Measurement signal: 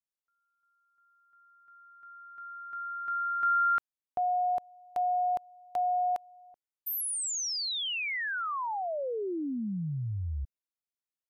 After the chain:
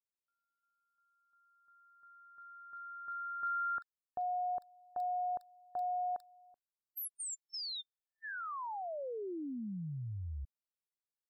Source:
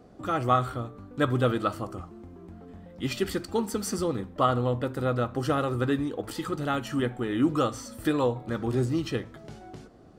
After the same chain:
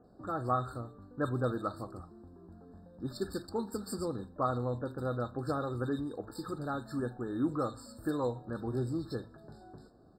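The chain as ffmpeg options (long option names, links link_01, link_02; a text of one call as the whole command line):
ffmpeg -i in.wav -filter_complex "[0:a]acrossover=split=2200[link_01][link_02];[link_02]adelay=40[link_03];[link_01][link_03]amix=inputs=2:normalize=0,afftfilt=real='re*eq(mod(floor(b*sr/1024/1800),2),0)':imag='im*eq(mod(floor(b*sr/1024/1800),2),0)':win_size=1024:overlap=0.75,volume=-7.5dB" out.wav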